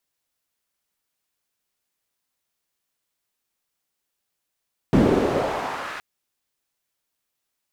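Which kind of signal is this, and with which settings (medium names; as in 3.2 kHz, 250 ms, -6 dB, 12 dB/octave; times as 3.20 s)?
swept filtered noise pink, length 1.07 s bandpass, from 230 Hz, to 1.6 kHz, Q 1.5, exponential, gain ramp -20.5 dB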